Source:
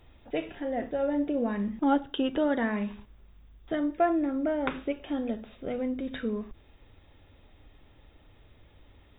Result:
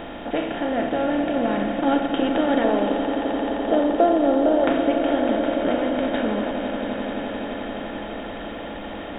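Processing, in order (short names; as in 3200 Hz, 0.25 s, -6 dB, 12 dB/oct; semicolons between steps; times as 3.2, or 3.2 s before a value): per-bin compression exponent 0.4; 2.64–4.64 ten-band EQ 125 Hz -9 dB, 500 Hz +10 dB, 2000 Hz -10 dB; swelling echo 86 ms, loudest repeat 8, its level -13.5 dB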